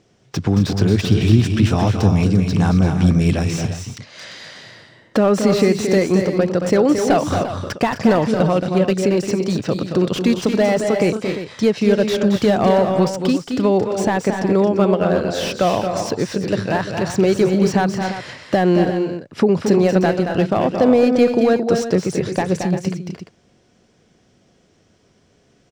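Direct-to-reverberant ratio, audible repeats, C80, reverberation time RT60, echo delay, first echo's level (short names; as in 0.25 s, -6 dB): none, 3, none, none, 0.224 s, -7.0 dB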